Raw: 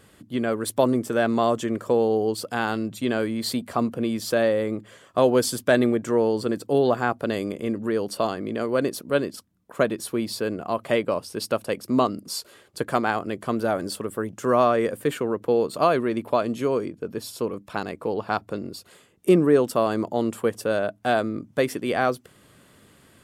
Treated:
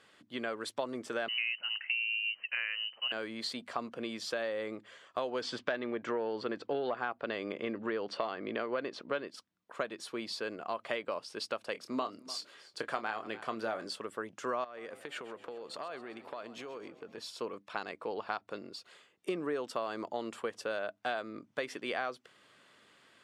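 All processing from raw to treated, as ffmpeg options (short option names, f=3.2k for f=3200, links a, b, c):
-filter_complex "[0:a]asettb=1/sr,asplit=3[a][b][c];[a]atrim=end=1.284[d];[b]atrim=start=1.28:end=3.12,asetpts=PTS-STARTPTS,afade=t=in:d=0.004:c=qsin,afade=t=out:st=1.836:d=0.004:c=qsin,highpass=310,lowpass=f=2.7k:t=q:w=0.5098,lowpass=f=2.7k:t=q:w=0.6013,lowpass=f=2.7k:t=q:w=0.9,lowpass=f=2.7k:t=q:w=2.563,afreqshift=-3200[e];[c]atrim=start=3.116[f];[d][e]acrossfade=d=0.004:c1=hsin:c2=qsin[g];[g][f]acrossfade=d=0.004:c1=qsin:c2=hsin,asettb=1/sr,asplit=3[h][i][j];[h]atrim=end=5.414[k];[i]atrim=start=5.41:end=9.28,asetpts=PTS-STARTPTS,afade=t=in:d=0.004:c=qsin,afade=t=out:st=3.866:d=0.004:c=qsin,lowpass=3.4k,acontrast=39[l];[j]atrim=start=9.276[m];[k][l]acrossfade=d=0.004:c1=hsin:c2=qsin[n];[n][m]acrossfade=d=0.004:c1=qsin:c2=hsin,asettb=1/sr,asplit=3[o][p][q];[o]atrim=end=11.724[r];[p]atrim=start=11.72:end=13.88,asetpts=PTS-STARTPTS,afade=t=in:d=0.004:c=qsin,afade=t=out:st=2.156:d=0.004:c=qsin,asplit=2[s][t];[t]adelay=27,volume=-10dB[u];[s][u]amix=inputs=2:normalize=0,atrim=end_sample=95256,aecho=1:1:296:0.0794,atrim=end_sample=95256[v];[q]atrim=start=13.876[w];[r][v]acrossfade=d=0.004:c1=hsin:c2=qsin[x];[x][w]acrossfade=d=0.004:c1=qsin:c2=hsin,asettb=1/sr,asplit=3[y][z][aa];[y]atrim=end=14.644[ab];[z]atrim=start=14.64:end=17.18,asetpts=PTS-STARTPTS,afade=t=in:d=0.004:c=qsin,afade=t=out:st=2.536:d=0.004:c=qsin,acompressor=threshold=-29dB:ratio=16:attack=3.2:release=140:knee=1:detection=peak,asplit=7[ac][ad][ae][af][ag][ah][ai];[ad]adelay=131,afreqshift=47,volume=-15.5dB[aj];[ae]adelay=262,afreqshift=94,volume=-20.4dB[ak];[af]adelay=393,afreqshift=141,volume=-25.3dB[al];[ag]adelay=524,afreqshift=188,volume=-30.1dB[am];[ah]adelay=655,afreqshift=235,volume=-35dB[an];[ai]adelay=786,afreqshift=282,volume=-39.9dB[ao];[ac][aj][ak][al][am][an][ao]amix=inputs=7:normalize=0,atrim=end_sample=112014[ap];[aa]atrim=start=17.176[aq];[ab][ap]acrossfade=d=0.004:c1=hsin:c2=qsin[ar];[ar][aq]acrossfade=d=0.004:c1=qsin:c2=hsin,highpass=f=1.1k:p=1,acompressor=threshold=-29dB:ratio=6,lowpass=4.8k,volume=-2dB"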